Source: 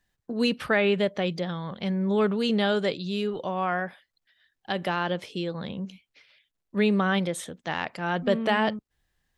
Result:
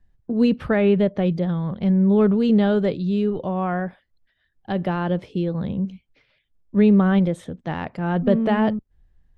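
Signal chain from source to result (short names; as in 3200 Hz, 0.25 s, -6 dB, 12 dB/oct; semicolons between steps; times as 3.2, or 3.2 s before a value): tilt -4 dB/oct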